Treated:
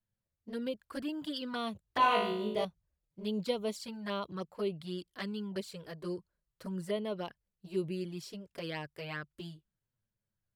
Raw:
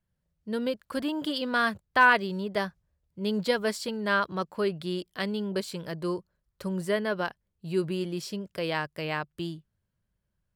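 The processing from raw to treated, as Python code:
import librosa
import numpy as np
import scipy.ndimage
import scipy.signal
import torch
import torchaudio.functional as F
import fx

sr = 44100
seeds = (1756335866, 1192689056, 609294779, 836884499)

y = fx.room_flutter(x, sr, wall_m=3.2, rt60_s=0.68, at=(1.83, 2.65))
y = fx.env_flanger(y, sr, rest_ms=9.3, full_db=-24.5)
y = y * 10.0 ** (-5.5 / 20.0)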